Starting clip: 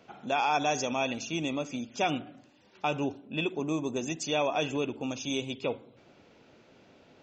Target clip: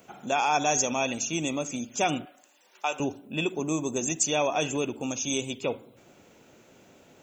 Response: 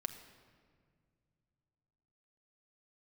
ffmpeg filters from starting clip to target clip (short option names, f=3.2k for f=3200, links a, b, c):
-filter_complex "[0:a]asplit=2[a][b];[1:a]atrim=start_sample=2205,atrim=end_sample=3528[c];[b][c]afir=irnorm=-1:irlink=0,volume=-9dB[d];[a][d]amix=inputs=2:normalize=0,aexciter=amount=9.1:drive=3.9:freq=6.8k,asettb=1/sr,asplit=3[e][f][g];[e]atrim=end=2.254[h];[f]atrim=start=2.25:end=3,asetpts=PTS-STARTPTS,afade=t=in:d=0.004:c=qsin,afade=t=out:st=0.746:d=0.004:c=qsin,highpass=610[i];[g]atrim=start=2.996[j];[h][i]acrossfade=d=0.004:c1=hsin:c2=qsin[k];[k][j]acrossfade=d=0.004:c1=qsin:c2=hsin"